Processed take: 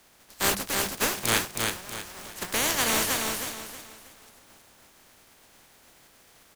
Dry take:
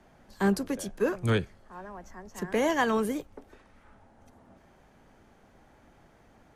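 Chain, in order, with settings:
compressing power law on the bin magnitudes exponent 0.26
mains-hum notches 50/100/150/200 Hz
repeating echo 319 ms, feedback 33%, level −3.5 dB

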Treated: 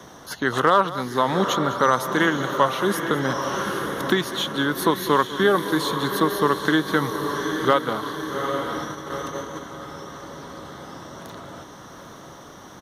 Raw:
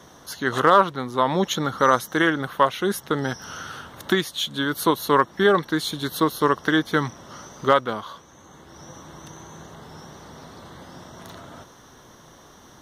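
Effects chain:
feedback delay with all-pass diffusion 831 ms, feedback 54%, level −9 dB
noise gate −34 dBFS, range −7 dB
single-tap delay 199 ms −17 dB
multiband upward and downward compressor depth 40%

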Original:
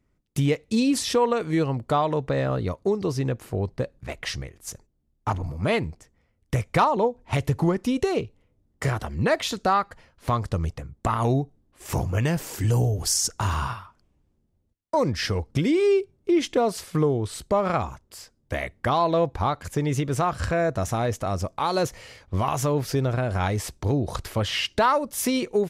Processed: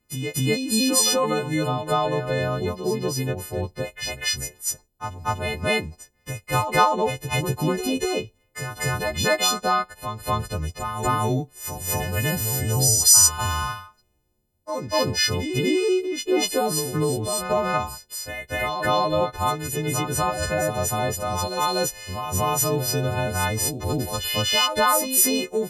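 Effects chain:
every partial snapped to a pitch grid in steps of 3 semitones
backwards echo 243 ms −6.5 dB
level −1 dB

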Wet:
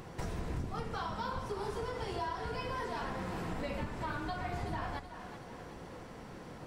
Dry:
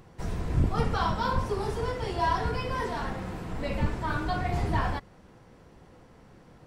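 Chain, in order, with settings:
low-shelf EQ 160 Hz −6 dB
downward compressor 12 to 1, threshold −42 dBFS, peak gain reduction 20 dB
on a send: echo with a time of its own for lows and highs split 570 Hz, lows 92 ms, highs 375 ms, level −10 dB
on the sum: level +7 dB

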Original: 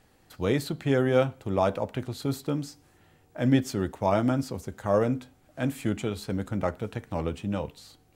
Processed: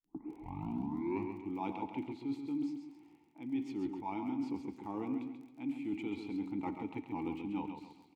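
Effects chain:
turntable start at the beginning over 1.60 s
dynamic equaliser 3,500 Hz, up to +5 dB, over −47 dBFS, Q 0.91
formant filter u
reversed playback
downward compressor 6 to 1, threshold −42 dBFS, peak gain reduction 18 dB
reversed playback
surface crackle 20 per second −61 dBFS
repeating echo 135 ms, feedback 38%, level −7 dB
on a send at −16 dB: convolution reverb RT60 0.40 s, pre-delay 50 ms
on the sum: level +7 dB

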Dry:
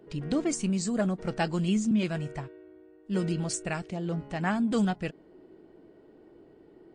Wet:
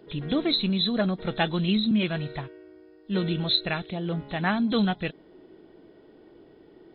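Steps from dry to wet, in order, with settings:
hearing-aid frequency compression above 3,200 Hz 4 to 1
high-shelf EQ 2,000 Hz +7 dB
level +2 dB

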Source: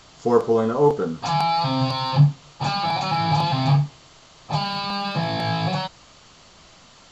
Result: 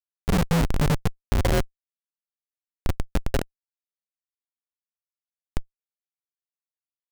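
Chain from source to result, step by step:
single-sideband voice off tune −290 Hz 290–3,300 Hz
reverb whose tail is shaped and stops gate 80 ms flat, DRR −7 dB
comparator with hysteresis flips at −8.5 dBFS
level −2 dB

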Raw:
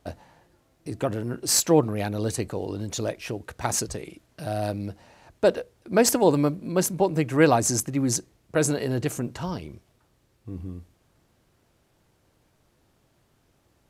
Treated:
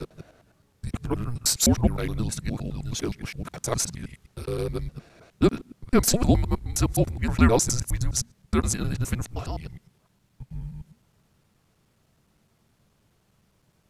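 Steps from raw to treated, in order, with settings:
reversed piece by piece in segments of 104 ms
frequency shifter −240 Hz

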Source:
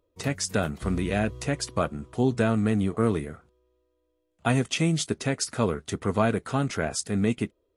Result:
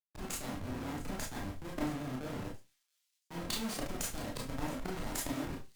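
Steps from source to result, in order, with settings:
low-shelf EQ 71 Hz +6 dB
mains-hum notches 60/120/180/240/300/360/420/480/540 Hz
reversed playback
downward compressor 10 to 1, threshold −31 dBFS, peak gain reduction 15 dB
reversed playback
comparator with hysteresis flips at −37 dBFS
output level in coarse steps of 12 dB
on a send: delay with a high-pass on its return 911 ms, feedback 43%, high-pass 3,100 Hz, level −12 dB
on the sum: four-comb reverb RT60 0.39 s, combs from 32 ms, DRR −2 dB
wrong playback speed 33 rpm record played at 45 rpm
multiband upward and downward expander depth 70%
level +5.5 dB

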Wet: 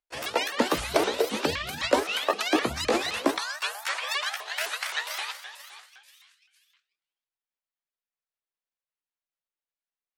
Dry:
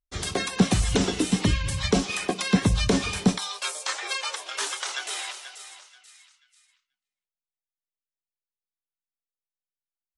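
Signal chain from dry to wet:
pitch shifter swept by a sawtooth +9.5 semitones, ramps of 259 ms
three-way crossover with the lows and the highs turned down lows −21 dB, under 370 Hz, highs −12 dB, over 3,900 Hz
level +4.5 dB

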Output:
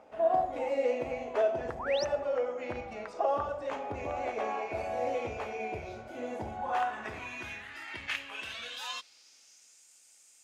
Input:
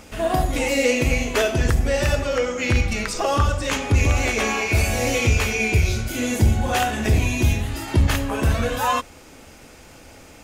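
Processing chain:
band-pass filter sweep 690 Hz → 7,800 Hz, 0:06.30–0:09.88
sound drawn into the spectrogram rise, 0:01.79–0:02.05, 840–6,400 Hz −35 dBFS
level −3 dB

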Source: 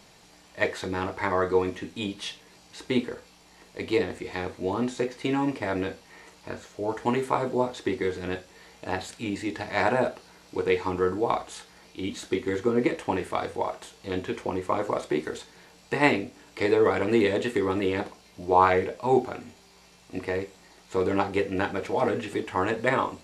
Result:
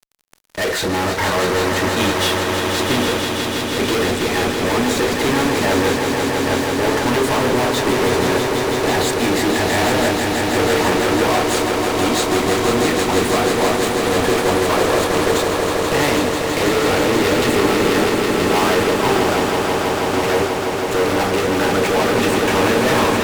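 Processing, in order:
fuzz pedal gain 42 dB, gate −45 dBFS
on a send: echo that builds up and dies away 163 ms, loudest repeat 5, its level −7.5 dB
on the sum: level −4.5 dB

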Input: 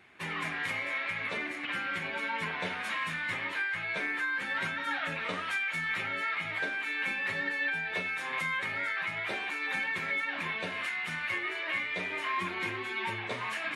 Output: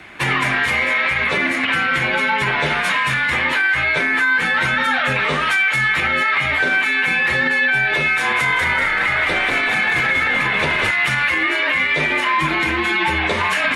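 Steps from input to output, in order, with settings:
frequency shifter −31 Hz
0:08.16–0:10.91: echo with shifted repeats 192 ms, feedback 47%, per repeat −49 Hz, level −3 dB
boost into a limiter +27.5 dB
level −8.5 dB

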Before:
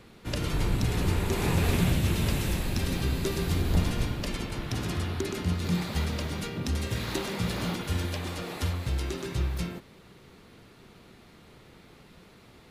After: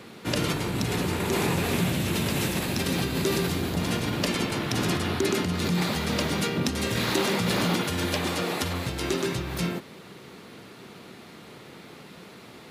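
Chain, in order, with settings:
in parallel at +2 dB: compressor whose output falls as the input rises −31 dBFS, ratio −1
on the sum: high-pass filter 150 Hz 12 dB per octave

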